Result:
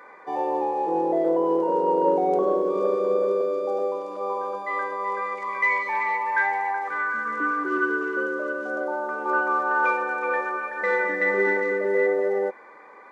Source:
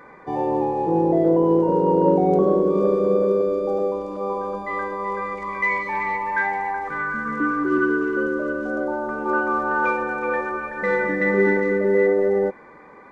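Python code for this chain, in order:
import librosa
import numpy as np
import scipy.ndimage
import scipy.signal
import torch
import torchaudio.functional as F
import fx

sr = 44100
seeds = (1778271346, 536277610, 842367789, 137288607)

y = scipy.signal.sosfilt(scipy.signal.butter(2, 480.0, 'highpass', fs=sr, output='sos'), x)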